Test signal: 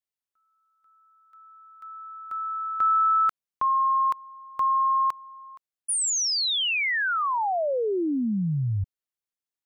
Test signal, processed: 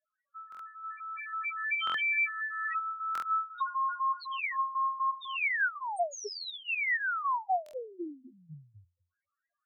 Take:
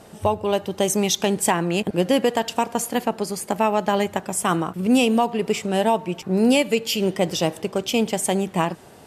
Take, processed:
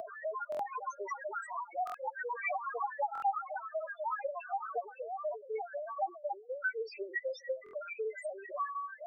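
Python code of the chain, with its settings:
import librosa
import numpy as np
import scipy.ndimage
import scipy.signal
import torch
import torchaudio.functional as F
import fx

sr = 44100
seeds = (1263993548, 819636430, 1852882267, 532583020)

y = fx.air_absorb(x, sr, metres=120.0)
y = fx.fixed_phaser(y, sr, hz=830.0, stages=6)
y = fx.comb_fb(y, sr, f0_hz=87.0, decay_s=0.64, harmonics='all', damping=0.3, mix_pct=60)
y = fx.echo_pitch(y, sr, ms=210, semitones=5, count=3, db_per_echo=-6.0)
y = fx.over_compress(y, sr, threshold_db=-39.0, ratio=-1.0)
y = fx.high_shelf(y, sr, hz=5600.0, db=-7.0)
y = fx.filter_lfo_highpass(y, sr, shape='saw_up', hz=4.0, low_hz=570.0, high_hz=2400.0, q=2.2)
y = fx.spec_topn(y, sr, count=2)
y = y + 0.4 * np.pad(y, (int(2.6 * sr / 1000.0), 0))[:len(y)]
y = fx.buffer_glitch(y, sr, at_s=(0.5, 1.85, 3.13, 7.64), block=1024, repeats=3)
y = fx.band_squash(y, sr, depth_pct=70)
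y = F.gain(torch.from_numpy(y), 7.0).numpy()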